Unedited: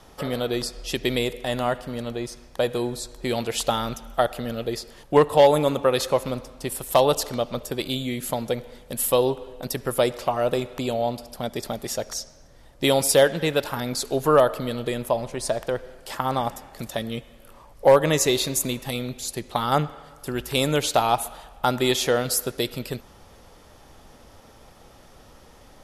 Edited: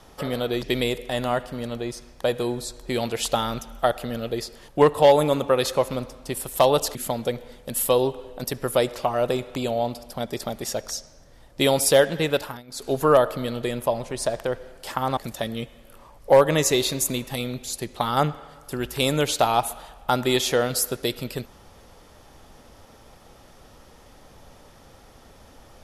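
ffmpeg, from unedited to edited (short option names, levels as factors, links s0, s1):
-filter_complex "[0:a]asplit=6[s0][s1][s2][s3][s4][s5];[s0]atrim=end=0.632[s6];[s1]atrim=start=0.978:end=7.302[s7];[s2]atrim=start=8.178:end=13.86,asetpts=PTS-STARTPTS,afade=t=out:st=5.432:d=0.25:silence=0.0944061[s8];[s3]atrim=start=13.86:end=13.9,asetpts=PTS-STARTPTS,volume=0.0944[s9];[s4]atrim=start=13.9:end=16.402,asetpts=PTS-STARTPTS,afade=t=in:d=0.25:silence=0.0944061[s10];[s5]atrim=start=16.718[s11];[s6][s7]acrossfade=d=0.004:c1=hsin:c2=hsin[s12];[s8][s9][s10]concat=n=3:v=0:a=1[s13];[s12][s13]acrossfade=d=0.004:c1=hsin:c2=hsin[s14];[s14][s11]acrossfade=d=0.004:c1=hsin:c2=hsin"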